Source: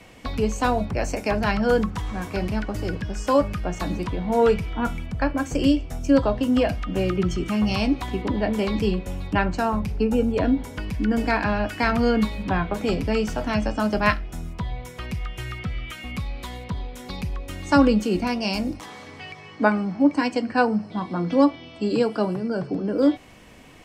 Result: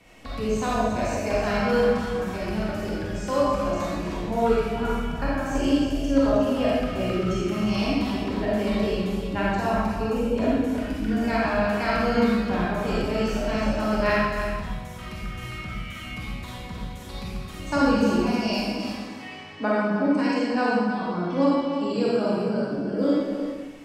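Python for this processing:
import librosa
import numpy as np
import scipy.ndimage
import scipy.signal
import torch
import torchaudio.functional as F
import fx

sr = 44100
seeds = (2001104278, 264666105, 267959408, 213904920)

p1 = x + fx.echo_single(x, sr, ms=314, db=-9.0, dry=0)
p2 = fx.rev_freeverb(p1, sr, rt60_s=1.2, hf_ratio=0.95, predelay_ms=5, drr_db=-6.5)
y = F.gain(torch.from_numpy(p2), -8.5).numpy()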